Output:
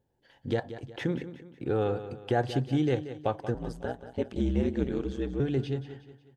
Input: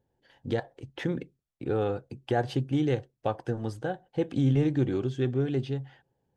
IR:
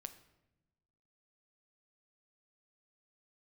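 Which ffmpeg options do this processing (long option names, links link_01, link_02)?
-filter_complex "[0:a]asettb=1/sr,asplit=3[link_01][link_02][link_03];[link_01]atrim=end=3.544[link_04];[link_02]atrim=start=3.54:end=5.4,asetpts=PTS-STARTPTS,afade=type=in:duration=0.004:curve=qsin,afade=type=out:start_time=1.856:duration=0.004:curve=qsin,aeval=exprs='val(0)*sin(2*PI*63*n/s)':channel_layout=same[link_05];[link_03]atrim=start=5.396[link_06];[link_04][link_05]acrossfade=duration=0.004:curve1=hsin:curve2=qsin[link_07];[link_07][link_06]acrossfade=duration=0.004:curve1=qsin:curve2=hsin,aecho=1:1:182|364|546|728:0.237|0.0996|0.0418|0.0176"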